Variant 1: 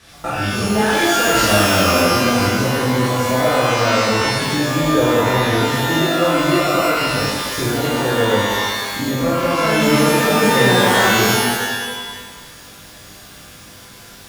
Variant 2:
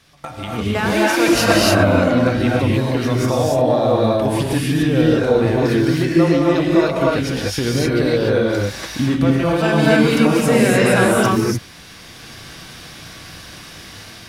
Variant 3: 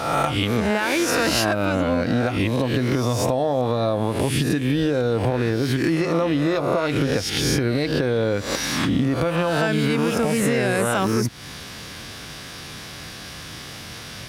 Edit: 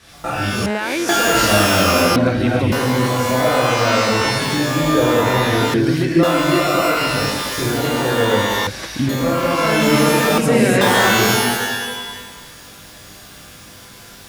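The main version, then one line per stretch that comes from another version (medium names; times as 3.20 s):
1
0.66–1.09 s: from 3
2.16–2.72 s: from 2
5.74–6.23 s: from 2
8.67–9.09 s: from 2
10.38–10.81 s: from 2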